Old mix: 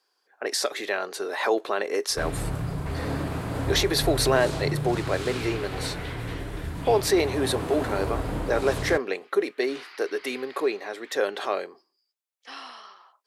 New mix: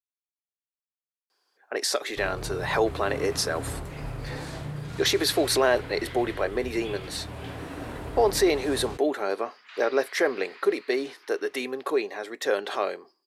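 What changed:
speech: entry +1.30 s; first sound -6.5 dB

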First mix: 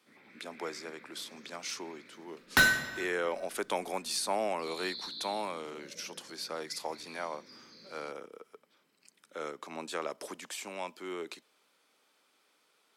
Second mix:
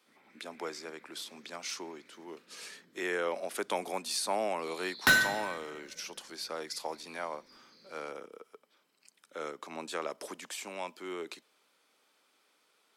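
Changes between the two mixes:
first sound -6.0 dB; second sound: entry +2.50 s; master: add bass shelf 62 Hz -11 dB

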